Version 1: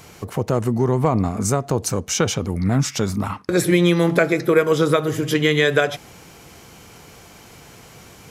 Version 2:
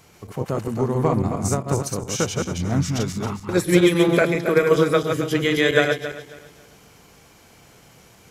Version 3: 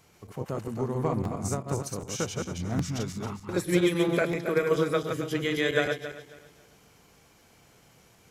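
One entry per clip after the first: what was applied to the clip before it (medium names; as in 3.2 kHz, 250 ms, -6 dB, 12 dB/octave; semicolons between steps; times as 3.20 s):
backward echo that repeats 136 ms, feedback 54%, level -3 dB; upward expansion 1.5:1, over -25 dBFS; trim -1 dB
crackling interface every 0.77 s, samples 512, repeat, from 0.46 s; trim -8 dB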